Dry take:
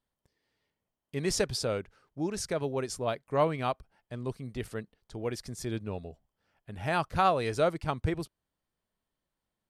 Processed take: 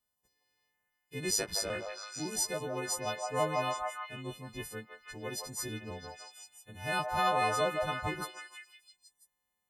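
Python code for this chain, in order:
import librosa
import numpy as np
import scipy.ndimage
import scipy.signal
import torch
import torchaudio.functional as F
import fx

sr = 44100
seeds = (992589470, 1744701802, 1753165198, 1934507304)

y = fx.freq_snap(x, sr, grid_st=3)
y = fx.ring_mod(y, sr, carrier_hz=52.0, at=(1.3, 1.7))
y = fx.echo_stepped(y, sr, ms=165, hz=830.0, octaves=0.7, feedback_pct=70, wet_db=0.0)
y = F.gain(torch.from_numpy(y), -6.0).numpy()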